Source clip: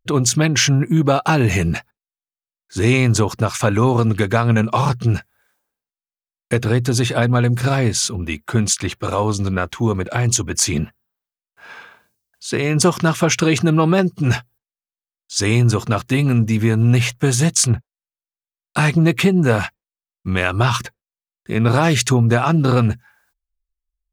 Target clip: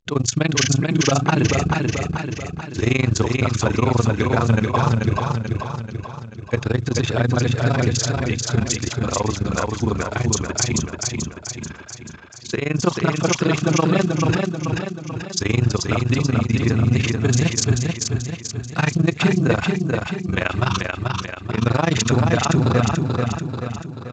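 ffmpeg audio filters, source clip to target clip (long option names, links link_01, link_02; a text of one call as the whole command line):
ffmpeg -i in.wav -af "tremolo=f=24:d=0.947,aecho=1:1:436|872|1308|1744|2180|2616|3052:0.668|0.348|0.181|0.094|0.0489|0.0254|0.0132" -ar 16000 -c:a pcm_mulaw out.wav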